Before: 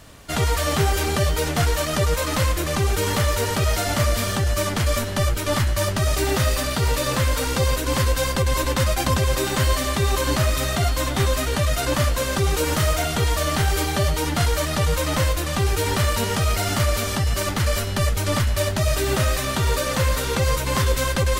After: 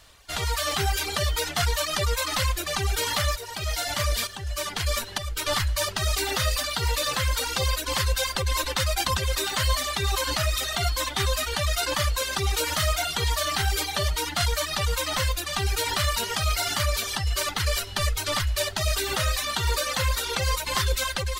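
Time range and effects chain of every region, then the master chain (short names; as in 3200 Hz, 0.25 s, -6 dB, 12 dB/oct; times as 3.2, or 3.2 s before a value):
3.36–5.37 tremolo saw up 1.1 Hz, depth 55% + notch 1300 Hz, Q 17
whole clip: reverb removal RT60 1.8 s; graphic EQ 125/250/500/4000 Hz -8/-11/-3/+5 dB; AGC gain up to 6 dB; gain -6 dB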